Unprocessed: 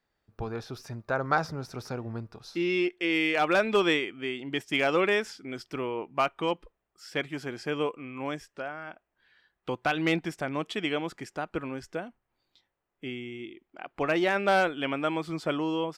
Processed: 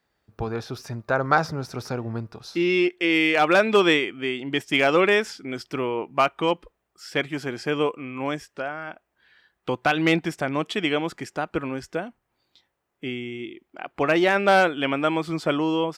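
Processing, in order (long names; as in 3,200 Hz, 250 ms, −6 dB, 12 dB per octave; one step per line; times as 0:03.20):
high-pass filter 42 Hz
level +6 dB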